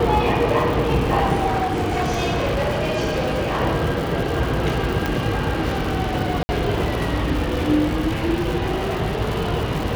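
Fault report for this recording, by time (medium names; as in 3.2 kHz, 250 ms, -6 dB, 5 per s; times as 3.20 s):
crackle 250 per s -26 dBFS
1.46–3.61 s: clipped -17.5 dBFS
5.06 s: pop -8 dBFS
6.43–6.49 s: dropout 60 ms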